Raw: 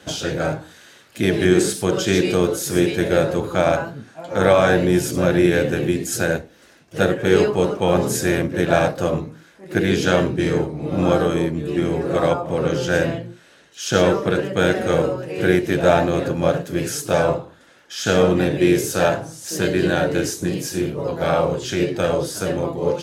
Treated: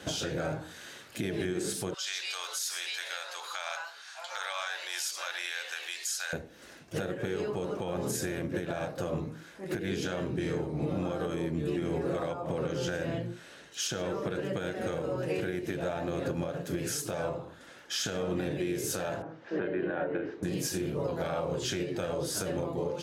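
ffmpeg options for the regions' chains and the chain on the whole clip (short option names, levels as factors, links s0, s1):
-filter_complex "[0:a]asettb=1/sr,asplit=3[s0][s1][s2];[s0]atrim=end=1.944[s3];[s1]atrim=start=1.94:end=6.33,asetpts=PTS-STARTPTS,afade=t=in:d=0.004:c=qsin,afade=t=out:st=4.386:d=0.004:c=qsin,highpass=f=900:w=0.5412,highpass=f=900:w=1.3066,equalizer=f=4600:t=o:w=1.6:g=10,acompressor=threshold=0.00891:ratio=1.5:attack=3.2:release=140:knee=1:detection=peak[s4];[s2]atrim=start=6.326[s5];[s3][s4]acrossfade=d=0.004:c1=hsin:c2=qsin[s6];[s6][s5]acrossfade=d=0.004:c1=qsin:c2=hsin,asettb=1/sr,asplit=3[s7][s8][s9];[s7]atrim=end=19.224[s10];[s8]atrim=start=19.22:end=20.43,asetpts=PTS-STARTPTS,afade=t=in:d=0.004:c=qsin,afade=t=out:st=1.206:d=0.004:c=qsin,lowpass=f=3500:w=0.5412,lowpass=f=3500:w=1.3066,acrossover=split=220 2200:gain=0.2 1 0.1[s11][s12][s13];[s11][s12][s13]amix=inputs=3:normalize=0[s14];[s9]atrim=start=20.426[s15];[s10][s14]acrossfade=d=0.004:c1=hsin:c2=qsin[s16];[s16][s15]acrossfade=d=0.004:c1=qsin:c2=hsin,acompressor=threshold=0.0891:ratio=6,alimiter=limit=0.075:level=0:latency=1:release=396"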